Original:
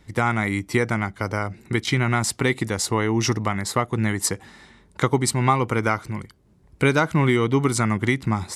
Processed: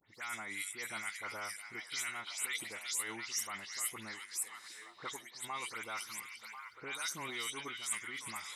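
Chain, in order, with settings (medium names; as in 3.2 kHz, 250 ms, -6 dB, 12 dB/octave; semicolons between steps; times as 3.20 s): delay that grows with frequency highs late, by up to 137 ms; differentiator; reverse; compression 10:1, threshold -41 dBFS, peak gain reduction 22 dB; reverse; harmonic tremolo 2.2 Hz, depth 70%, crossover 1.4 kHz; repeats whose band climbs or falls 346 ms, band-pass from 3.3 kHz, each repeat -0.7 oct, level -2.5 dB; trim +6.5 dB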